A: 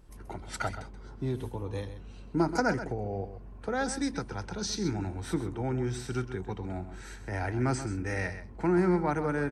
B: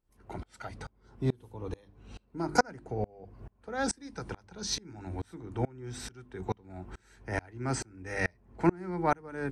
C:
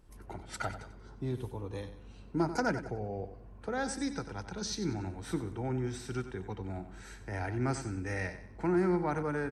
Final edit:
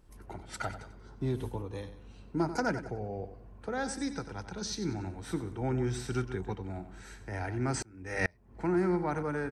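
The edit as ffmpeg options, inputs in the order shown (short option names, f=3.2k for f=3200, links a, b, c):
-filter_complex "[0:a]asplit=2[a][b];[2:a]asplit=4[c][d][e][f];[c]atrim=end=1.212[g];[a]atrim=start=1.208:end=1.622[h];[d]atrim=start=1.618:end=5.622[i];[b]atrim=start=5.618:end=6.552[j];[e]atrim=start=6.548:end=7.742[k];[1:a]atrim=start=7.738:end=8.572[l];[f]atrim=start=8.568[m];[g][h]acrossfade=d=0.004:c1=hsin:c2=hsin[n];[n][i]acrossfade=d=0.004:c1=hsin:c2=hsin[o];[o][j]acrossfade=d=0.004:c1=hsin:c2=hsin[p];[p][k]acrossfade=d=0.004:c1=hsin:c2=hsin[q];[q][l]acrossfade=d=0.004:c1=hsin:c2=hsin[r];[r][m]acrossfade=d=0.004:c1=hsin:c2=hsin"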